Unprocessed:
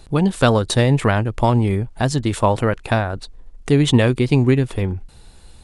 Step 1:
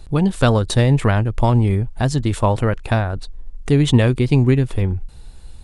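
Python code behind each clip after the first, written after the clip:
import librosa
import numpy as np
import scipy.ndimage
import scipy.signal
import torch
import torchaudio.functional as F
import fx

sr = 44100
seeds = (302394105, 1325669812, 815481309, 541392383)

y = fx.low_shelf(x, sr, hz=100.0, db=10.5)
y = F.gain(torch.from_numpy(y), -2.0).numpy()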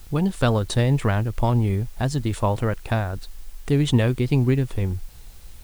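y = fx.quant_dither(x, sr, seeds[0], bits=8, dither='triangular')
y = F.gain(torch.from_numpy(y), -5.0).numpy()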